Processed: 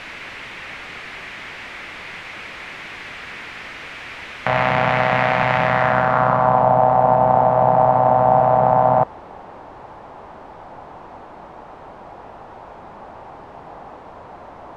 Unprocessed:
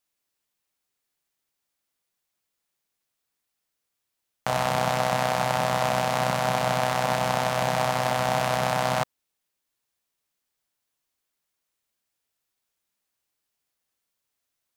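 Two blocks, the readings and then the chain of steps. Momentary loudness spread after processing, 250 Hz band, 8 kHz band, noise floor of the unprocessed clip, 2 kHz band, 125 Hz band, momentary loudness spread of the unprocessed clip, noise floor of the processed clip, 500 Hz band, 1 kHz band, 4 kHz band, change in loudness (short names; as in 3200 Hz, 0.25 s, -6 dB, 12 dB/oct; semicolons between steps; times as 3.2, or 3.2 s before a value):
18 LU, +7.0 dB, under -10 dB, -82 dBFS, +7.5 dB, +7.0 dB, 2 LU, -40 dBFS, +9.5 dB, +10.5 dB, -1.5 dB, +9.0 dB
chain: zero-crossing step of -27 dBFS; low-pass sweep 2200 Hz -> 840 Hz, 5.6–6.74; gain +3.5 dB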